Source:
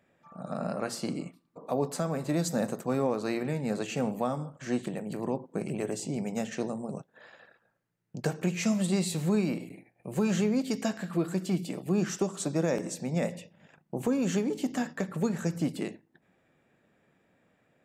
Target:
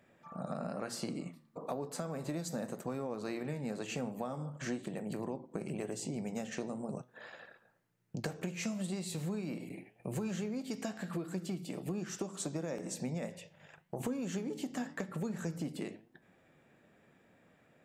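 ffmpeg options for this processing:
ffmpeg -i in.wav -filter_complex "[0:a]asettb=1/sr,asplit=3[link_01][link_02][link_03];[link_01]atrim=end=13.324[link_04];[link_02]atrim=start=13.32:end=14,asetpts=PTS-STARTPTS,afade=type=in:duration=0.004:curve=qsin,afade=type=out:start_time=0.676:duration=0.004:curve=qsin,equalizer=frequency=240:width_type=o:width=1.1:gain=-12[link_05];[link_03]atrim=start=13.996[link_06];[link_04][link_05]acrossfade=duration=0.004:curve1=hsin:curve2=qsin[link_07];[link_07][link_06]acrossfade=duration=0.004:curve1=qsin:curve2=hsin,acompressor=threshold=-38dB:ratio=6,flanger=delay=8:depth=5.6:regen=85:speed=0.99:shape=sinusoidal,volume=7dB" out.wav

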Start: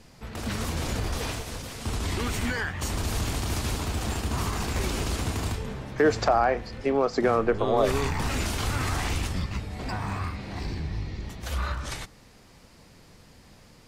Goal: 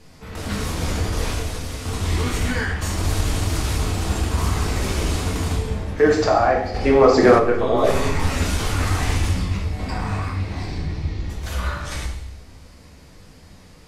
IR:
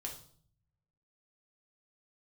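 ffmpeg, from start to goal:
-filter_complex "[1:a]atrim=start_sample=2205,asetrate=26901,aresample=44100[link_01];[0:a][link_01]afir=irnorm=-1:irlink=0,asplit=3[link_02][link_03][link_04];[link_02]afade=type=out:start_time=6.74:duration=0.02[link_05];[link_03]acontrast=77,afade=type=in:start_time=6.74:duration=0.02,afade=type=out:start_time=7.38:duration=0.02[link_06];[link_04]afade=type=in:start_time=7.38:duration=0.02[link_07];[link_05][link_06][link_07]amix=inputs=3:normalize=0,volume=3dB"

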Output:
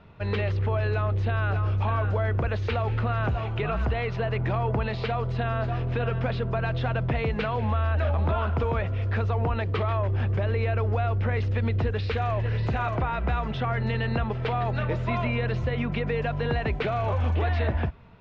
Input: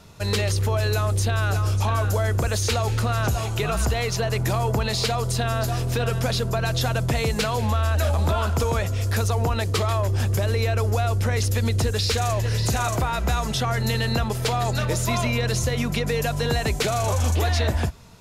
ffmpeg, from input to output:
ffmpeg -i in.wav -af "lowpass=frequency=2800:width=0.5412,lowpass=frequency=2800:width=1.3066,volume=-3dB" out.wav

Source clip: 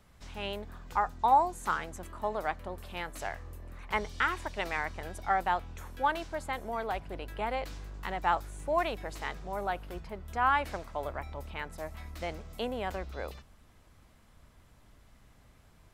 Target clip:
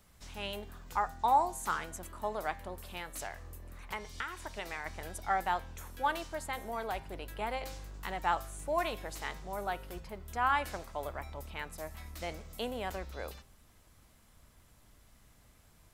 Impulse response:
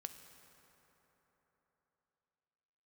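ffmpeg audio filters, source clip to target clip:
-filter_complex "[0:a]asettb=1/sr,asplit=3[link_01][link_02][link_03];[link_01]atrim=end=2.824[link_04];[link_02]atrim=start=2.82:end=4.86,asetpts=PTS-STARTPTS,afade=type=in:duration=0.004:curve=qsin,afade=type=out:start_time=2.036:duration=0.004:curve=qsin,acompressor=threshold=-34dB:ratio=4[link_05];[link_03]atrim=start=4.856[link_06];[link_04][link_05]acrossfade=duration=0.004:curve1=hsin:curve2=qsin[link_07];[link_07][link_06]acrossfade=duration=0.004:curve1=qsin:curve2=hsin,highshelf=frequency=5300:gain=10.5,bandreject=frequency=132.5:width_type=h:width=4,bandreject=frequency=265:width_type=h:width=4,bandreject=frequency=397.5:width_type=h:width=4,bandreject=frequency=530:width_type=h:width=4,bandreject=frequency=662.5:width_type=h:width=4,bandreject=frequency=795:width_type=h:width=4,bandreject=frequency=927.5:width_type=h:width=4,bandreject=frequency=1060:width_type=h:width=4,bandreject=frequency=1192.5:width_type=h:width=4,bandreject=frequency=1325:width_type=h:width=4,bandreject=frequency=1457.5:width_type=h:width=4,bandreject=frequency=1590:width_type=h:width=4,bandreject=frequency=1722.5:width_type=h:width=4,bandreject=frequency=1855:width_type=h:width=4,bandreject=frequency=1987.5:width_type=h:width=4,bandreject=frequency=2120:width_type=h:width=4,bandreject=frequency=2252.5:width_type=h:width=4,bandreject=frequency=2385:width_type=h:width=4,bandreject=frequency=2517.5:width_type=h:width=4,bandreject=frequency=2650:width_type=h:width=4,bandreject=frequency=2782.5:width_type=h:width=4,bandreject=frequency=2915:width_type=h:width=4,bandreject=frequency=3047.5:width_type=h:width=4,bandreject=frequency=3180:width_type=h:width=4,bandreject=frequency=3312.5:width_type=h:width=4,bandreject=frequency=3445:width_type=h:width=4,bandreject=frequency=3577.5:width_type=h:width=4,bandreject=frequency=3710:width_type=h:width=4,bandreject=frequency=3842.5:width_type=h:width=4,bandreject=frequency=3975:width_type=h:width=4,bandreject=frequency=4107.5:width_type=h:width=4,bandreject=frequency=4240:width_type=h:width=4,bandreject=frequency=4372.5:width_type=h:width=4,bandreject=frequency=4505:width_type=h:width=4,bandreject=frequency=4637.5:width_type=h:width=4,bandreject=frequency=4770:width_type=h:width=4,volume=-3dB"

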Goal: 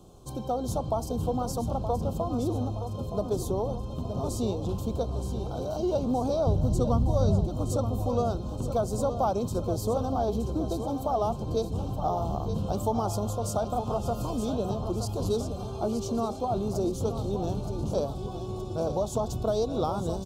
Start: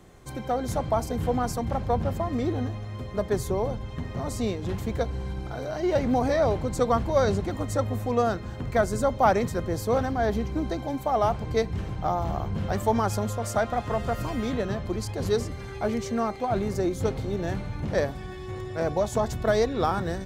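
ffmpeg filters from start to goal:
ffmpeg -i in.wav -filter_complex "[0:a]asettb=1/sr,asplit=3[link_01][link_02][link_03];[link_01]atrim=end=6.474[link_04];[link_02]atrim=start=6.47:end=7.47,asetpts=PTS-STARTPTS,afade=type=in:duration=0.004:curve=qsin,afade=type=out:start_time=0.996:duration=0.004:curve=qsin,bass=frequency=250:gain=14,treble=frequency=4000:gain=2[link_05];[link_03]atrim=start=7.466[link_06];[link_04][link_05]acrossfade=duration=0.004:curve1=hsin:curve2=qsin[link_07];[link_07][link_06]acrossfade=duration=0.004:curve1=qsin:curve2=hsin,acompressor=threshold=-26dB:ratio=2,asuperstop=centerf=1900:order=4:qfactor=0.92,aecho=1:1:921|1842|2763|3684|4605|5526:0.335|0.171|0.0871|0.0444|0.0227|0.0116" out.wav

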